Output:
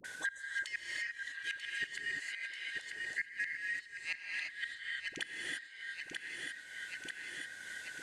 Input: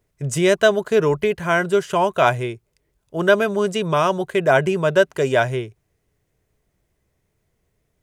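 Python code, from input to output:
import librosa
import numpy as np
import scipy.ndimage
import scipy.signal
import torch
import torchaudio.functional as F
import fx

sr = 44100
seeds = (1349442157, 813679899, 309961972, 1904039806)

y = fx.band_shuffle(x, sr, order='4123')
y = scipy.signal.sosfilt(scipy.signal.butter(4, 9200.0, 'lowpass', fs=sr, output='sos'), y)
y = fx.peak_eq(y, sr, hz=2000.0, db=-11.5, octaves=2.6)
y = fx.hum_notches(y, sr, base_hz=60, count=2)
y = fx.over_compress(y, sr, threshold_db=-31.0, ratio=-0.5)
y = fx.dispersion(y, sr, late='highs', ms=45.0, hz=590.0)
y = fx.gate_flip(y, sr, shuts_db=-24.0, range_db=-31)
y = fx.echo_feedback(y, sr, ms=939, feedback_pct=44, wet_db=-14)
y = fx.rev_gated(y, sr, seeds[0], gate_ms=370, shape='rising', drr_db=-1.0)
y = fx.band_squash(y, sr, depth_pct=100)
y = y * 10.0 ** (1.0 / 20.0)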